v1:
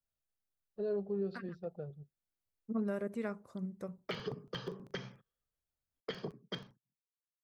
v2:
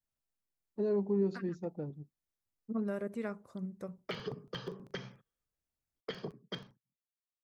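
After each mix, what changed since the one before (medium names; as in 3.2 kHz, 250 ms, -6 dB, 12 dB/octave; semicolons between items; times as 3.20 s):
first voice: remove static phaser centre 1.4 kHz, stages 8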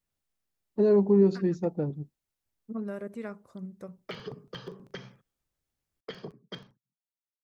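first voice +10.0 dB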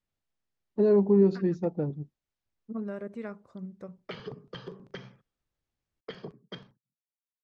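master: add distance through air 87 m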